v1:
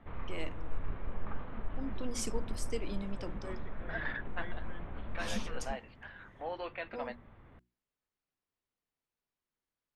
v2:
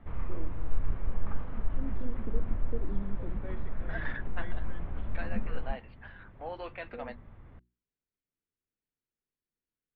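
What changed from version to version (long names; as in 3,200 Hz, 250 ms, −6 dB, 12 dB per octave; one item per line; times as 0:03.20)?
first voice: add inverse Chebyshev band-stop filter 2,000–5,800 Hz, stop band 80 dB
background: add low-shelf EQ 150 Hz +8.5 dB
master: add high-frequency loss of the air 89 metres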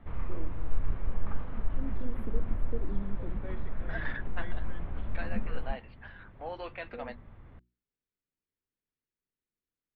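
master: remove high-frequency loss of the air 89 metres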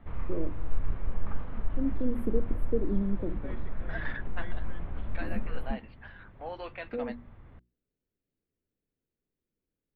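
first voice +10.5 dB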